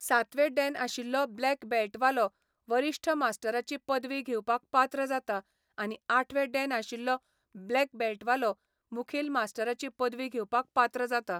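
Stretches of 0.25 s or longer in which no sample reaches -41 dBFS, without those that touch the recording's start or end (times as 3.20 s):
2.28–2.69 s
5.40–5.78 s
7.17–7.55 s
8.53–8.92 s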